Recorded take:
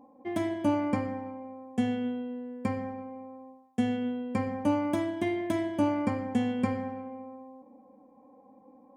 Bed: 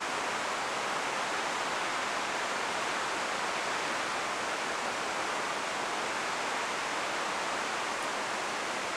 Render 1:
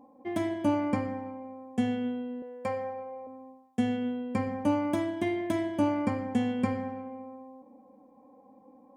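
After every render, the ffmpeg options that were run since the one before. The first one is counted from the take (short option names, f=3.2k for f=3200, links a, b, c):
-filter_complex "[0:a]asettb=1/sr,asplit=3[a][b][c];[a]atrim=end=2.424[d];[b]atrim=start=2.42:end=3.27,asetpts=PTS-STARTPTS,afade=t=in:d=0.004:c=qsin,afade=t=out:st=0.846:d=0.004:c=qsin,lowshelf=f=430:t=q:w=3:g=-8[e];[c]atrim=start=3.266[f];[d][e]acrossfade=d=0.004:c1=hsin:c2=qsin[g];[g][f]acrossfade=d=0.004:c1=qsin:c2=hsin"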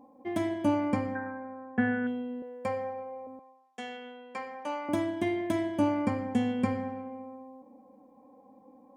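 -filter_complex "[0:a]asettb=1/sr,asplit=3[a][b][c];[a]atrim=end=1.154[d];[b]atrim=start=1.15:end=2.07,asetpts=PTS-STARTPTS,afade=t=in:d=0.004:c=qsin,afade=t=out:st=0.916:d=0.004:c=qsin,lowpass=f=1.6k:t=q:w=15[e];[c]atrim=start=2.066[f];[d][e]acrossfade=d=0.004:c1=hsin:c2=qsin[g];[g][f]acrossfade=d=0.004:c1=qsin:c2=hsin,asettb=1/sr,asplit=3[h][i][j];[h]atrim=end=3.394[k];[i]atrim=start=3.39:end=4.89,asetpts=PTS-STARTPTS,afade=t=in:d=0.004:c=qsin,afade=t=out:st=1.496:d=0.004:c=qsin,highpass=740,lowpass=7.1k[l];[j]atrim=start=4.886[m];[k][l]acrossfade=d=0.004:c1=hsin:c2=qsin[n];[n][m]acrossfade=d=0.004:c1=qsin:c2=hsin"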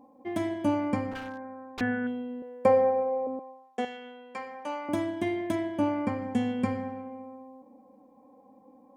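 -filter_complex "[0:a]asettb=1/sr,asplit=3[a][b][c];[a]atrim=end=1.114[d];[b]atrim=start=1.11:end=1.81,asetpts=PTS-STARTPTS,afade=t=in:d=0.004:c=qsin,afade=t=out:st=0.696:d=0.004:c=qsin,aeval=exprs='0.0282*(abs(mod(val(0)/0.0282+3,4)-2)-1)':c=same[e];[c]atrim=start=1.806[f];[d][e]acrossfade=d=0.004:c1=hsin:c2=qsin[g];[g][f]acrossfade=d=0.004:c1=qsin:c2=hsin,asettb=1/sr,asplit=3[h][i][j];[h]atrim=end=2.654[k];[i]atrim=start=2.65:end=3.85,asetpts=PTS-STARTPTS,afade=t=in:d=0.004:c=qsin,afade=t=out:st=1.196:d=0.004:c=qsin,equalizer=f=420:w=0.44:g=13.5[l];[j]atrim=start=3.846[m];[k][l]acrossfade=d=0.004:c1=hsin:c2=qsin[n];[n][m]acrossfade=d=0.004:c1=qsin:c2=hsin,asettb=1/sr,asplit=3[o][p][q];[o]atrim=end=5.554[r];[p]atrim=start=5.55:end=6.22,asetpts=PTS-STARTPTS,afade=t=in:d=0.004:c=qsin,afade=t=out:st=0.666:d=0.004:c=qsin,bass=f=250:g=-2,treble=f=4k:g=-6[s];[q]atrim=start=6.216[t];[r][s]acrossfade=d=0.004:c1=hsin:c2=qsin[u];[u][t]acrossfade=d=0.004:c1=qsin:c2=hsin"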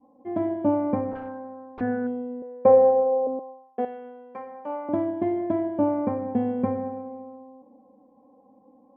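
-af "lowpass=1.1k,adynamicequalizer=threshold=0.01:dfrequency=540:dqfactor=0.74:tfrequency=540:tqfactor=0.74:attack=5:release=100:ratio=0.375:range=3.5:mode=boostabove:tftype=bell"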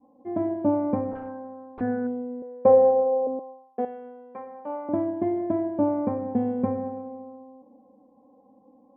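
-af "lowpass=f=1.4k:p=1"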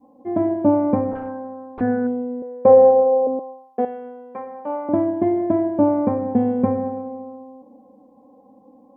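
-af "volume=6.5dB,alimiter=limit=-3dB:level=0:latency=1"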